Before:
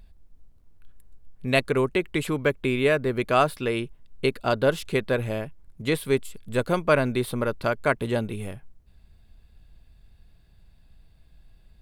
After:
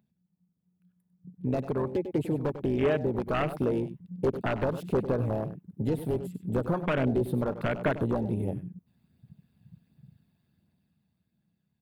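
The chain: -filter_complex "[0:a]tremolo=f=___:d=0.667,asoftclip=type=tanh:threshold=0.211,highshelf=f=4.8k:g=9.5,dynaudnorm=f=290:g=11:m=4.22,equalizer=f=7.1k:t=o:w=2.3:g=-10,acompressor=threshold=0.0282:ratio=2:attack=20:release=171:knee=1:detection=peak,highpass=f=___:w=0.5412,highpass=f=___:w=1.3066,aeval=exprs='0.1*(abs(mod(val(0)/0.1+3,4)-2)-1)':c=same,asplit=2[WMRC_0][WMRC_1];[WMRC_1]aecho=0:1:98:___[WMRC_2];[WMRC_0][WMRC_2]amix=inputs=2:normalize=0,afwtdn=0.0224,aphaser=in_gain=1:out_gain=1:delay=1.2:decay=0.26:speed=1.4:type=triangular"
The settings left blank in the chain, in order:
180, 97, 97, 0.282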